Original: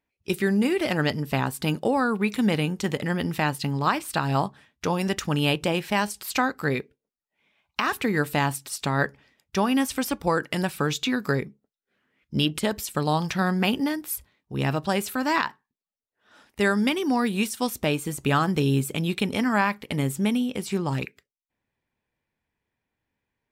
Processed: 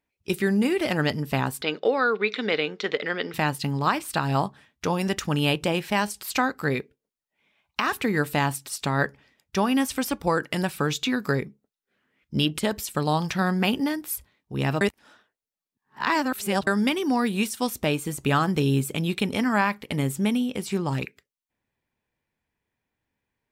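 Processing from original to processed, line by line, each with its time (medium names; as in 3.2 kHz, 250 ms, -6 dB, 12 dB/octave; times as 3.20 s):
1.62–3.34 s: cabinet simulation 390–5000 Hz, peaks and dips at 440 Hz +8 dB, 880 Hz -6 dB, 1.4 kHz +5 dB, 2.1 kHz +6 dB, 3.7 kHz +8 dB
14.81–16.67 s: reverse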